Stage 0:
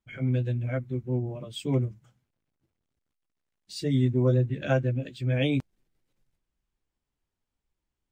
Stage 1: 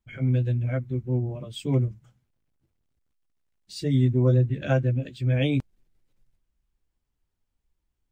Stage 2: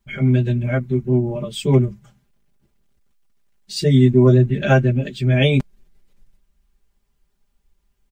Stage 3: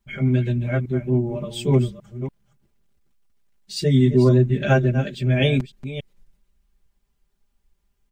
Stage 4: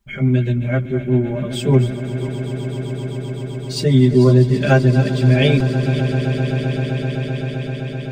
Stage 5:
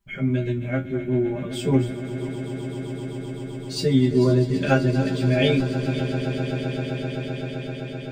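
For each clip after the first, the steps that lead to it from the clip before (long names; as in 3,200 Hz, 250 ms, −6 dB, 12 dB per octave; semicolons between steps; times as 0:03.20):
low-shelf EQ 100 Hz +9.5 dB
comb filter 5 ms, depth 86%; level +8.5 dB
delay that plays each chunk backwards 286 ms, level −11.5 dB; level −3 dB
echo that builds up and dies away 129 ms, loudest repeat 8, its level −16 dB; level +3.5 dB
tuned comb filter 90 Hz, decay 0.19 s, harmonics all, mix 90%; level +2 dB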